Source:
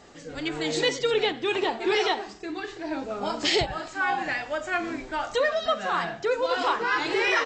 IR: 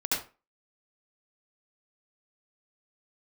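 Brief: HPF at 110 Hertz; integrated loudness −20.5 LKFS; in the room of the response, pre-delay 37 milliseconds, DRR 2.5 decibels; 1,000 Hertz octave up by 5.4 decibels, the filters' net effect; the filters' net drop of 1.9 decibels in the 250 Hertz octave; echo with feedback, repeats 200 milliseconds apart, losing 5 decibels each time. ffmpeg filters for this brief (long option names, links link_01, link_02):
-filter_complex "[0:a]highpass=110,equalizer=frequency=250:width_type=o:gain=-3.5,equalizer=frequency=1000:width_type=o:gain=7,aecho=1:1:200|400|600|800|1000|1200|1400:0.562|0.315|0.176|0.0988|0.0553|0.031|0.0173,asplit=2[link_01][link_02];[1:a]atrim=start_sample=2205,adelay=37[link_03];[link_02][link_03]afir=irnorm=-1:irlink=0,volume=-11dB[link_04];[link_01][link_04]amix=inputs=2:normalize=0,volume=0.5dB"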